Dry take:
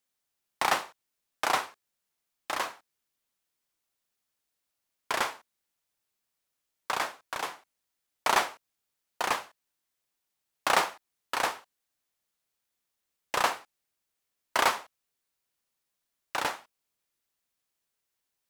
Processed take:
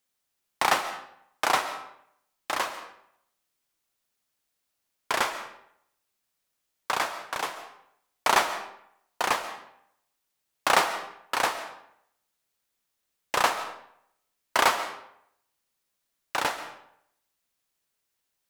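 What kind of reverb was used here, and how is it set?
digital reverb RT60 0.71 s, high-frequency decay 0.75×, pre-delay 95 ms, DRR 11 dB; gain +3 dB

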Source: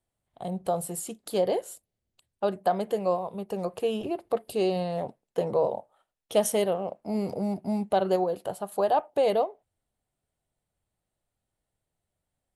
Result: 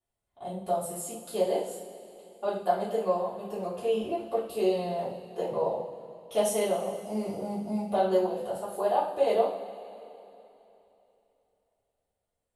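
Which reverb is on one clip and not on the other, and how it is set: two-slope reverb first 0.48 s, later 3.2 s, from -17 dB, DRR -10 dB; gain -12 dB

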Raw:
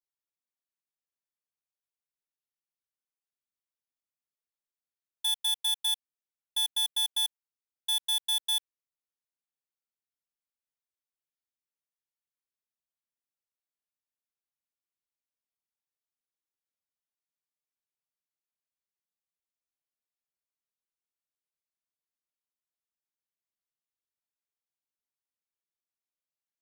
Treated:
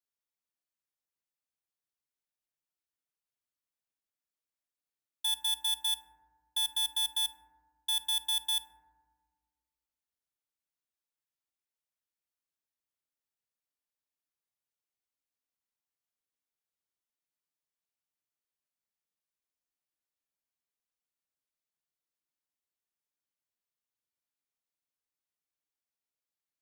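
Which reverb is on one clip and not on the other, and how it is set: FDN reverb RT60 1.5 s, low-frequency decay 1.4×, high-frequency decay 0.25×, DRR 10.5 dB; gain -1.5 dB

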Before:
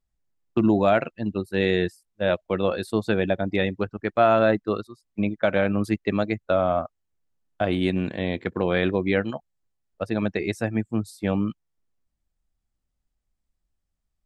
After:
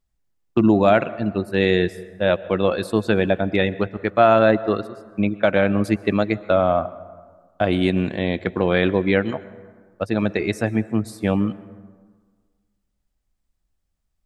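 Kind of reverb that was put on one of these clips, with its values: plate-style reverb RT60 1.6 s, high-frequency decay 0.45×, pre-delay 0.105 s, DRR 17.5 dB; gain +4 dB

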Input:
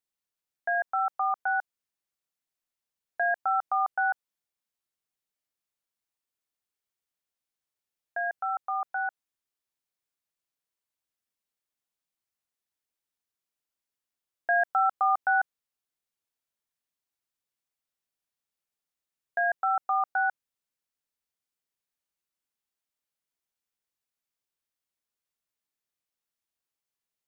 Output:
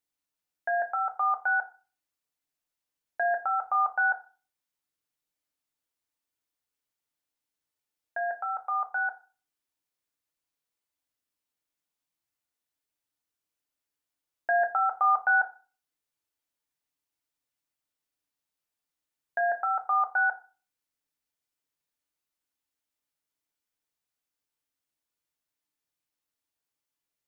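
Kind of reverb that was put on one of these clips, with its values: FDN reverb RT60 0.36 s, low-frequency decay 1.35×, high-frequency decay 0.7×, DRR 5 dB

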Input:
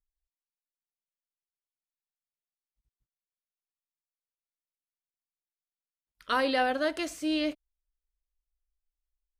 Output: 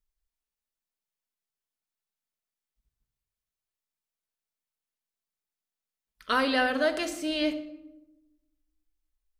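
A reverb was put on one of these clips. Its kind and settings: shoebox room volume 3500 m³, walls furnished, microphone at 1.5 m; gain +2 dB

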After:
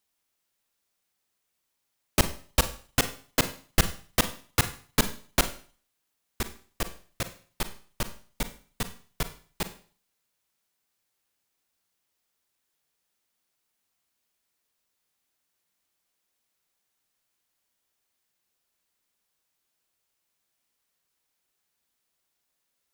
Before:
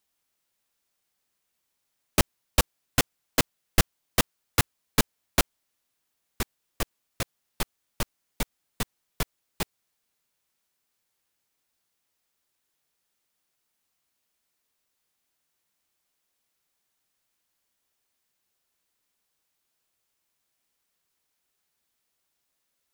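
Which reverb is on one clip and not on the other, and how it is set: Schroeder reverb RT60 0.43 s, combs from 33 ms, DRR 10 dB; gain -1 dB

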